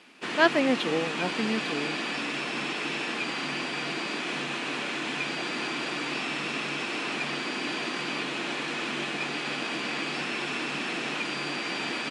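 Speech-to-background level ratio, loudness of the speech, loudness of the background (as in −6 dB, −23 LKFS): 3.0 dB, −27.5 LKFS, −30.5 LKFS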